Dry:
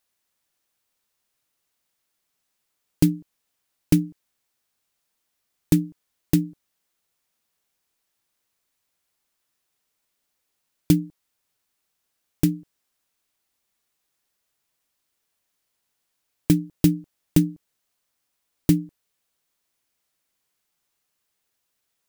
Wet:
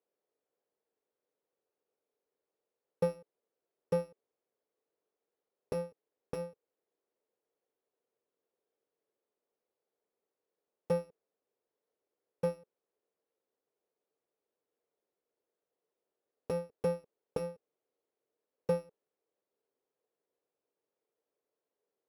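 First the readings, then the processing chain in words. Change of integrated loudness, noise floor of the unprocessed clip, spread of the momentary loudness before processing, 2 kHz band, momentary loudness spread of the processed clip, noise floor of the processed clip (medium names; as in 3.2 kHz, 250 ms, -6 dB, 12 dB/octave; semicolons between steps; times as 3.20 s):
-14.0 dB, -77 dBFS, 14 LU, -10.0 dB, 14 LU, under -85 dBFS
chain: bit-reversed sample order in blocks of 128 samples; in parallel at +3 dB: peak limiter -14.5 dBFS, peak gain reduction 11 dB; on the sum: band-pass filter 450 Hz, Q 4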